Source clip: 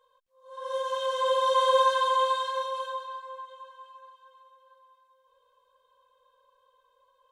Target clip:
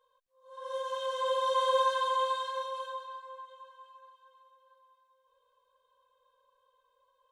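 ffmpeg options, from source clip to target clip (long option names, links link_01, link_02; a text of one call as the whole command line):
ffmpeg -i in.wav -af "volume=-5dB" out.wav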